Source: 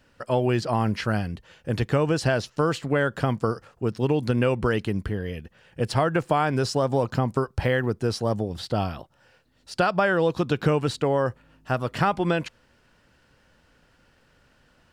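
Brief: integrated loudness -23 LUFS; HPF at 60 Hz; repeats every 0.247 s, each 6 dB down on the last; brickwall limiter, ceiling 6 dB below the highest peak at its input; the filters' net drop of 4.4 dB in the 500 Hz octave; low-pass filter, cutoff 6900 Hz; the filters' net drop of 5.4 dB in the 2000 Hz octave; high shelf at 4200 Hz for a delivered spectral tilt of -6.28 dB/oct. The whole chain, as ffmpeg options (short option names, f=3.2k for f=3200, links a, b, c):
-af "highpass=60,lowpass=6.9k,equalizer=f=500:t=o:g=-5,equalizer=f=2k:t=o:g=-6.5,highshelf=f=4.2k:g=-4.5,alimiter=limit=-17.5dB:level=0:latency=1,aecho=1:1:247|494|741|988|1235|1482:0.501|0.251|0.125|0.0626|0.0313|0.0157,volume=5dB"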